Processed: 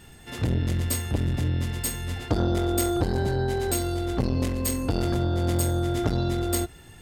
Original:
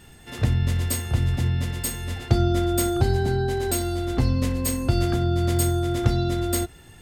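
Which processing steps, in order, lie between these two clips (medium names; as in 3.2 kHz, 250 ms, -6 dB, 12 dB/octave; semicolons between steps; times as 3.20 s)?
transformer saturation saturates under 440 Hz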